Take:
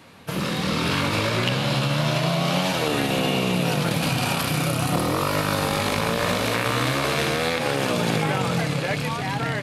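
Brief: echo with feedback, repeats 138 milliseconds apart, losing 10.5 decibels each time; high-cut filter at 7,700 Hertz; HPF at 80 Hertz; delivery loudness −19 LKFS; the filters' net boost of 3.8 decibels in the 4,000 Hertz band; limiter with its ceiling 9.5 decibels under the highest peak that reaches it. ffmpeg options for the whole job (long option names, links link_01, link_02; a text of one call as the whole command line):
ffmpeg -i in.wav -af "highpass=80,lowpass=7700,equalizer=frequency=4000:width_type=o:gain=5,alimiter=limit=-13.5dB:level=0:latency=1,aecho=1:1:138|276|414:0.299|0.0896|0.0269,volume=4dB" out.wav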